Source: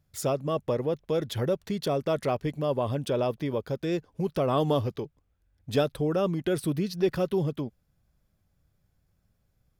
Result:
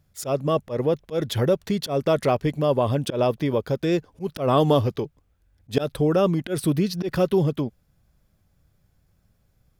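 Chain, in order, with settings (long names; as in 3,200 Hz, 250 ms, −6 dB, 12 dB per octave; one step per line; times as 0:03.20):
volume swells 113 ms
level +6.5 dB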